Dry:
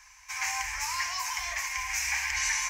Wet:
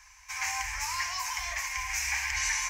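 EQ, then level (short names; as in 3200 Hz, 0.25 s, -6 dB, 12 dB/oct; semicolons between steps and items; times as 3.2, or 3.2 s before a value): low shelf 280 Hz +5 dB; -1.0 dB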